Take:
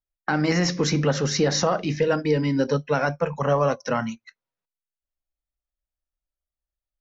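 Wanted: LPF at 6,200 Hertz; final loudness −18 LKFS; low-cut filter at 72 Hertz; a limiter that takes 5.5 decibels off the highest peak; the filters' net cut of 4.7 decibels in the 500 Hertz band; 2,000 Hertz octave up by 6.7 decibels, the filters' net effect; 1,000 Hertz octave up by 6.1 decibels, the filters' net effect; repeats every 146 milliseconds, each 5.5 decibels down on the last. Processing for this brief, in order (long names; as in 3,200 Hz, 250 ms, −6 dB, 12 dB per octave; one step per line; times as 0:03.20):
high-pass filter 72 Hz
low-pass filter 6,200 Hz
parametric band 500 Hz −8 dB
parametric band 1,000 Hz +8.5 dB
parametric band 2,000 Hz +6 dB
brickwall limiter −10.5 dBFS
repeating echo 146 ms, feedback 53%, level −5.5 dB
level +4 dB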